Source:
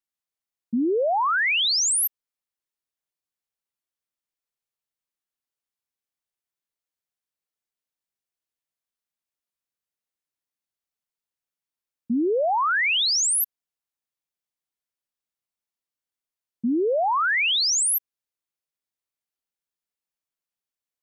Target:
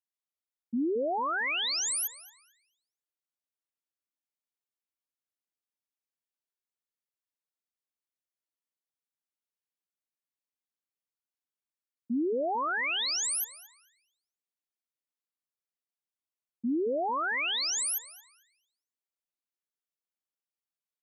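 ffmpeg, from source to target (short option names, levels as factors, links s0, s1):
-filter_complex "[0:a]lowshelf=f=160:t=q:w=1.5:g=-14,asplit=2[s0][s1];[s1]adelay=224,lowpass=f=3400:p=1,volume=0.282,asplit=2[s2][s3];[s3]adelay=224,lowpass=f=3400:p=1,volume=0.45,asplit=2[s4][s5];[s5]adelay=224,lowpass=f=3400:p=1,volume=0.45,asplit=2[s6][s7];[s7]adelay=224,lowpass=f=3400:p=1,volume=0.45,asplit=2[s8][s9];[s9]adelay=224,lowpass=f=3400:p=1,volume=0.45[s10];[s2][s4][s6][s8][s10]amix=inputs=5:normalize=0[s11];[s0][s11]amix=inputs=2:normalize=0,volume=0.355"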